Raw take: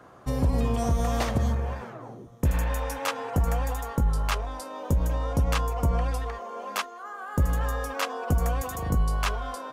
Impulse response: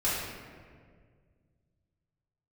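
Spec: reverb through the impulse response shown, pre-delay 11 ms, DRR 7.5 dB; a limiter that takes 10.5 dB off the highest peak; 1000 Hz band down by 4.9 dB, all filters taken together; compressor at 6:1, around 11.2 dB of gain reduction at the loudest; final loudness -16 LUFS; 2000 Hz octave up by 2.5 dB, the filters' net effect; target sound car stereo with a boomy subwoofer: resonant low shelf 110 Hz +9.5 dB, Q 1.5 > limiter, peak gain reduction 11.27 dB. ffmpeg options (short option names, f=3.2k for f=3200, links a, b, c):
-filter_complex "[0:a]equalizer=f=1k:t=o:g=-8,equalizer=f=2k:t=o:g=6,acompressor=threshold=-31dB:ratio=6,alimiter=level_in=3.5dB:limit=-24dB:level=0:latency=1,volume=-3.5dB,asplit=2[a][b];[1:a]atrim=start_sample=2205,adelay=11[c];[b][c]afir=irnorm=-1:irlink=0,volume=-17.5dB[d];[a][d]amix=inputs=2:normalize=0,lowshelf=f=110:t=q:w=1.5:g=9.5,volume=17.5dB,alimiter=limit=-7.5dB:level=0:latency=1"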